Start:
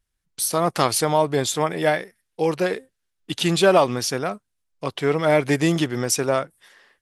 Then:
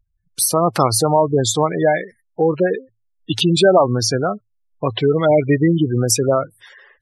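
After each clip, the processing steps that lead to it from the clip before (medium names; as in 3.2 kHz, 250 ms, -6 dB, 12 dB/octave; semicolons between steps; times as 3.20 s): spectral gate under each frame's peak -15 dB strong; peaking EQ 110 Hz +13.5 dB 0.25 oct; in parallel at +3 dB: compression, threshold -26 dBFS, peak gain reduction 13.5 dB; on the sum: trim +1.5 dB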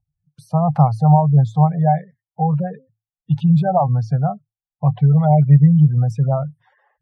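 two resonant band-passes 340 Hz, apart 2.4 oct; bass shelf 320 Hz +11.5 dB; trim +4 dB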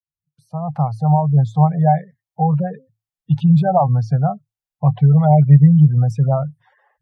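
fade-in on the opening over 1.81 s; trim +1.5 dB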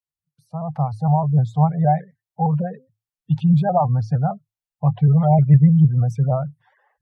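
vibrato with a chosen wave saw up 6.5 Hz, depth 100 cents; trim -3 dB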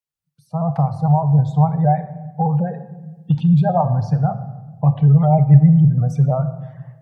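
recorder AGC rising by 9.3 dB/s; simulated room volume 720 m³, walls mixed, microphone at 0.53 m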